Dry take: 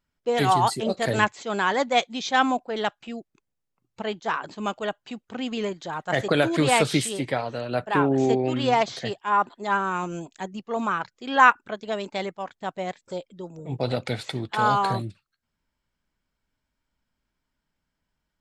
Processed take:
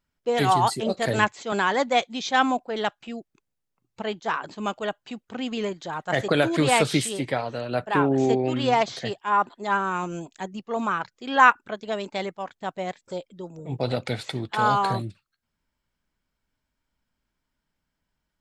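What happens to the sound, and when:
0:01.52–0:02.02: multiband upward and downward compressor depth 40%

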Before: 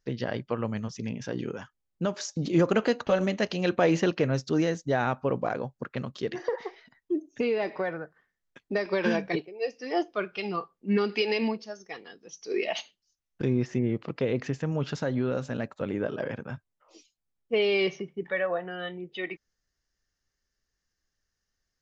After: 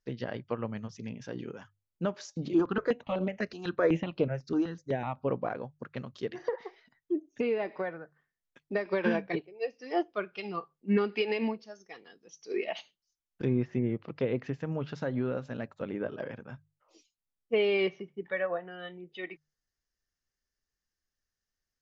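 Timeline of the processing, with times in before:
0:02.53–0:05.28: step-sequenced phaser 8 Hz 550–6,400 Hz
whole clip: treble cut that deepens with the level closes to 2,900 Hz, closed at −24.5 dBFS; mains-hum notches 50/100/150 Hz; expander for the loud parts 1.5 to 1, over −35 dBFS

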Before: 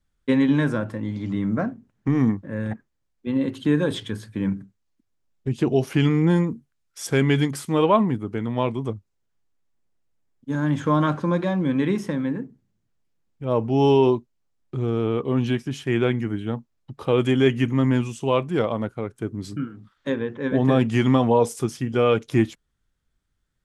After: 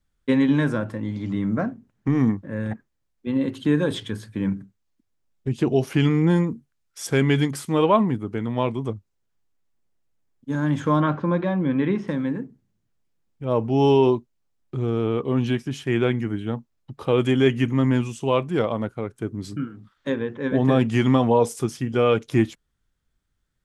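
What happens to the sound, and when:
0:11.00–0:12.08: low-pass filter 3,000 Hz

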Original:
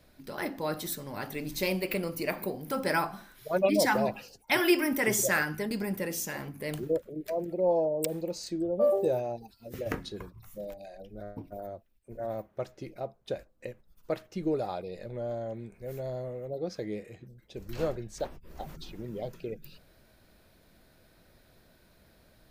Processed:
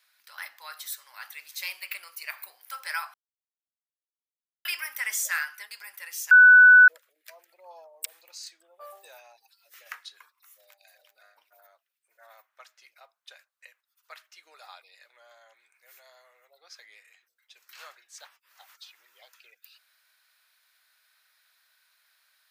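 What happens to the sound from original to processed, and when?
0:03.14–0:04.65: silence
0:06.31–0:06.88: beep over 1,490 Hz −8.5 dBFS
0:10.50–0:11.17: delay throw 370 ms, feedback 10%, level −6.5 dB
whole clip: high-pass filter 1,200 Hz 24 dB per octave

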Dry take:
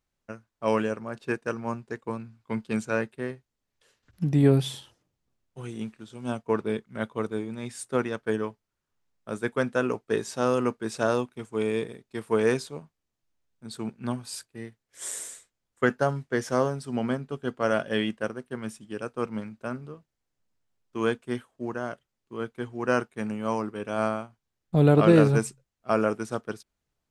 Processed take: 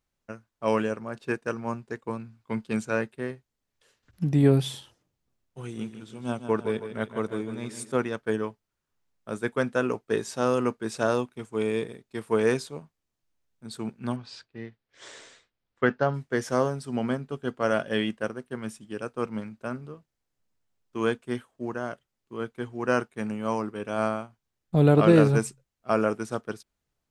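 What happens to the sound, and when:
0:05.62–0:07.92: repeating echo 155 ms, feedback 46%, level −10 dB
0:14.16–0:16.14: low-pass filter 4,700 Hz 24 dB per octave

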